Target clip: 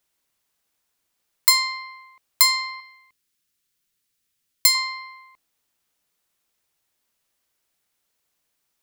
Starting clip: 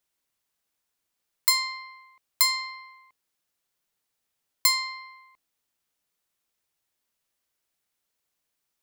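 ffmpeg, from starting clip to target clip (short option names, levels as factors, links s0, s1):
-filter_complex "[0:a]asettb=1/sr,asplit=3[s0][s1][s2];[s0]atrim=end=2.804[s3];[s1]atrim=start=2.8:end=4.75,asetpts=PTS-STARTPTS,afade=t=in:d=0.004:c=qsin,afade=t=out:st=1.946:d=0.004:c=qsin,equalizer=f=750:t=o:w=1.5:g=-13.5[s4];[s2]atrim=start=4.746[s5];[s3][s4]acrossfade=d=0.004:c1=hsin:c2=qsin[s6];[s6][s5]acrossfade=d=0.004:c1=qsin:c2=hsin,volume=1.88"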